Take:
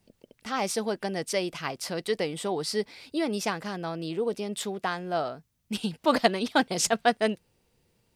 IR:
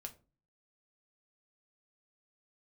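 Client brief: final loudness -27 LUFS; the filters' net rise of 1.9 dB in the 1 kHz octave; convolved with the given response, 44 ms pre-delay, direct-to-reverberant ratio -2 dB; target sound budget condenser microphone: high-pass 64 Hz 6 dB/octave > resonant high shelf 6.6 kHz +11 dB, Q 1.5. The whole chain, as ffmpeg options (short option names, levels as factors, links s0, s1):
-filter_complex "[0:a]equalizer=f=1000:t=o:g=3,asplit=2[s0][s1];[1:a]atrim=start_sample=2205,adelay=44[s2];[s1][s2]afir=irnorm=-1:irlink=0,volume=2.11[s3];[s0][s3]amix=inputs=2:normalize=0,highpass=f=64:p=1,highshelf=f=6600:t=q:w=1.5:g=11,volume=0.596"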